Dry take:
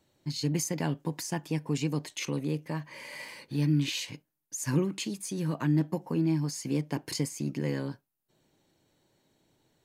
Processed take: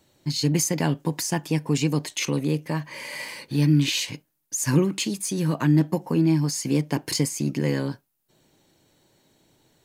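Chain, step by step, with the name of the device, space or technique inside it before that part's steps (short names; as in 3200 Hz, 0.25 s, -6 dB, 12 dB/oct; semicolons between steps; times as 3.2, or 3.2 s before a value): exciter from parts (in parallel at -6 dB: HPF 4700 Hz 6 dB/oct + soft clip -35 dBFS, distortion -12 dB); on the sum: gain +7 dB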